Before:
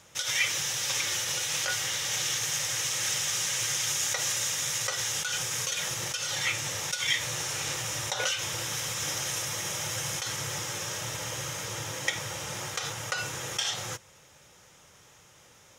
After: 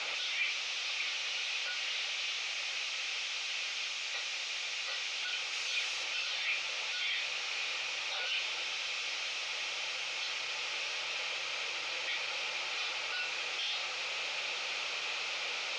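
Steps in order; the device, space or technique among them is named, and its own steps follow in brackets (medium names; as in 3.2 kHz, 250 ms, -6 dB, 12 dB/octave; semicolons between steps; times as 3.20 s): home computer beeper (one-bit comparator; cabinet simulation 770–4600 Hz, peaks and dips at 1 kHz -7 dB, 1.7 kHz -8 dB, 2.5 kHz +9 dB, 4.4 kHz +4 dB); 5.53–6.04 s: treble shelf 9.1 kHz +10.5 dB; trim -2 dB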